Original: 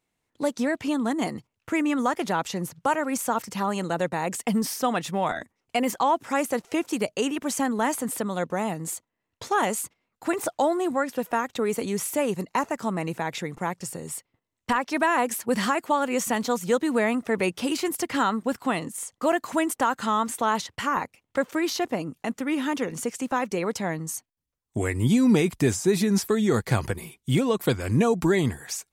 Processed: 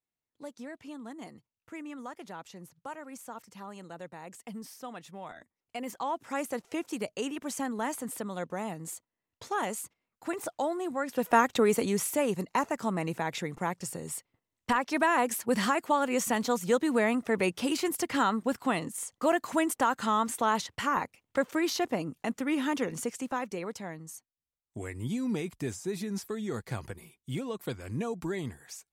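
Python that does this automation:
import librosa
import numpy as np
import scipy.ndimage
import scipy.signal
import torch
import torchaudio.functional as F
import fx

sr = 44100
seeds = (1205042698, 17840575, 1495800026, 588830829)

y = fx.gain(x, sr, db=fx.line((5.31, -17.5), (6.39, -8.0), (10.96, -8.0), (11.39, 4.0), (12.17, -3.0), (22.9, -3.0), (23.97, -12.5)))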